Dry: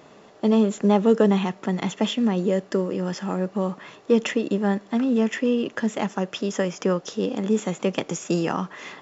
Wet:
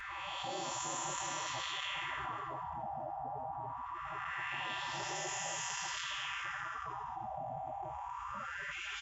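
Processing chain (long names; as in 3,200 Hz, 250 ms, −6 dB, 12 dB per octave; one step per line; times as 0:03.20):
spectrum smeared in time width 608 ms
high-pass filter 71 Hz 12 dB per octave
flat-topped bell 2,400 Hz −13 dB 2.6 octaves
feedback delay with all-pass diffusion 702 ms, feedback 43%, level −10 dB
auto-filter low-pass sine 0.23 Hz 420–6,600 Hz
gate on every frequency bin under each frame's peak −30 dB weak
comb filter 5.1 ms, depth 98%
envelope flattener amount 70%
level +5.5 dB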